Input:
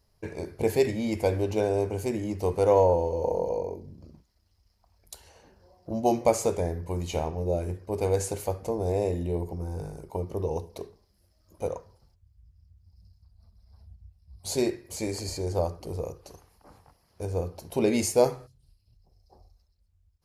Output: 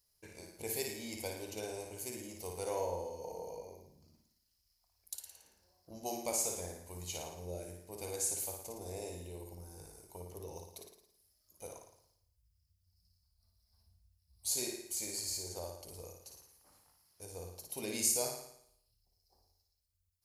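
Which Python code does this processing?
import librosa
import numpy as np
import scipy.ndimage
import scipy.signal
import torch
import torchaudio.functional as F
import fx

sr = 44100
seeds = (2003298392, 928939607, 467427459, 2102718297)

y = scipy.signal.lfilter([1.0, -0.9], [1.0], x)
y = fx.room_flutter(y, sr, wall_m=9.6, rt60_s=0.71)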